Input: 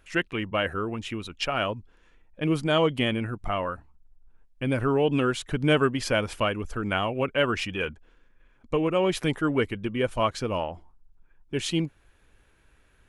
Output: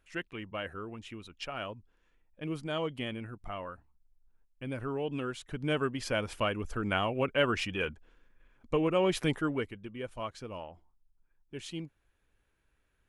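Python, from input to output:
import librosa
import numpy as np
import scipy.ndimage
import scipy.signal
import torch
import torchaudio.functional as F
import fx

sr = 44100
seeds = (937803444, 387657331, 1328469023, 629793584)

y = fx.gain(x, sr, db=fx.line((5.36, -11.5), (6.7, -3.5), (9.35, -3.5), (9.79, -13.5)))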